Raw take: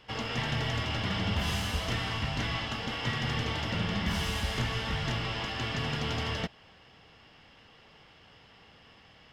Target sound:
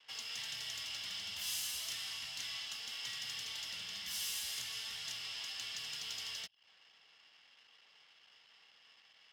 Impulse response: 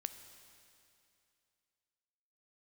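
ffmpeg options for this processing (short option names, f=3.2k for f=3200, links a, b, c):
-filter_complex "[0:a]acrossover=split=150|3000[a][b][c];[b]acompressor=threshold=-48dB:ratio=2[d];[a][d][c]amix=inputs=3:normalize=0,anlmdn=0.000158,aderivative,volume=4dB"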